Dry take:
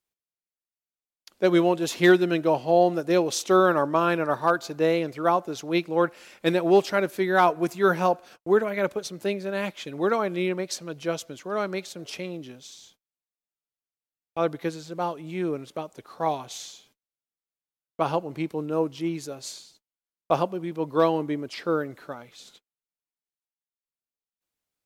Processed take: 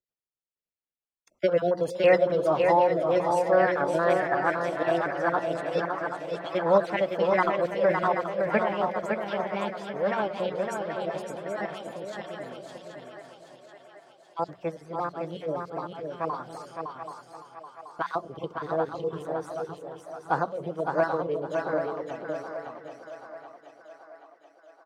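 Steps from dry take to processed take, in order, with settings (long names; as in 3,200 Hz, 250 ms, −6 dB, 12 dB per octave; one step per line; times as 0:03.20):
time-frequency cells dropped at random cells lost 29%
low-pass filter 1,100 Hz 6 dB per octave
mains-hum notches 60/120/180 Hz
echo with a time of its own for lows and highs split 390 Hz, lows 257 ms, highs 780 ms, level −8 dB
formants moved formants +5 semitones
repeating echo 561 ms, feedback 24%, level −5 dB
level −1.5 dB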